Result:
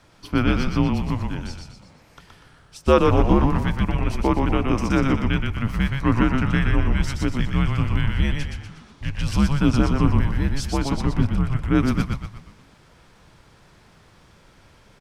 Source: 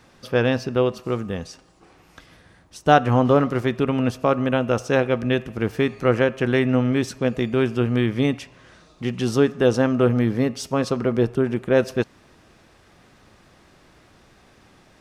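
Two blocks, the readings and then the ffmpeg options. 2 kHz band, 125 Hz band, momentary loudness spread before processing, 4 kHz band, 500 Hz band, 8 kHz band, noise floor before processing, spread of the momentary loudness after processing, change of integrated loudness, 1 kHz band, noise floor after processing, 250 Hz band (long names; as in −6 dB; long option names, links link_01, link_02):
−1.5 dB, +3.0 dB, 9 LU, 0.0 dB, −6.5 dB, 0.0 dB, −55 dBFS, 10 LU, −0.5 dB, −2.0 dB, −53 dBFS, 0.0 dB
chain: -filter_complex "[0:a]afreqshift=-220,asplit=7[link_01][link_02][link_03][link_04][link_05][link_06][link_07];[link_02]adelay=121,afreqshift=-56,volume=-3.5dB[link_08];[link_03]adelay=242,afreqshift=-112,volume=-10.2dB[link_09];[link_04]adelay=363,afreqshift=-168,volume=-17dB[link_10];[link_05]adelay=484,afreqshift=-224,volume=-23.7dB[link_11];[link_06]adelay=605,afreqshift=-280,volume=-30.5dB[link_12];[link_07]adelay=726,afreqshift=-336,volume=-37.2dB[link_13];[link_01][link_08][link_09][link_10][link_11][link_12][link_13]amix=inputs=7:normalize=0,volume=-1dB"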